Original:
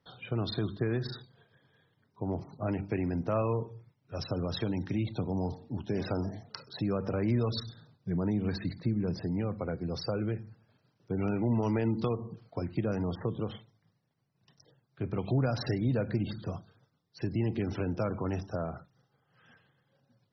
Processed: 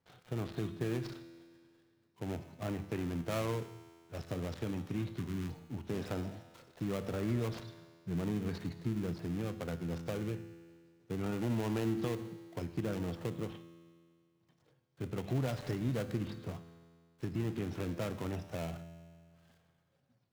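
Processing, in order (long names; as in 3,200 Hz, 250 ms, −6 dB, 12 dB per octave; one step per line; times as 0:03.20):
gap after every zero crossing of 0.26 ms
healed spectral selection 0:05.19–0:05.52, 420–950 Hz
tuned comb filter 84 Hz, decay 2 s, harmonics all, mix 70%
level +4.5 dB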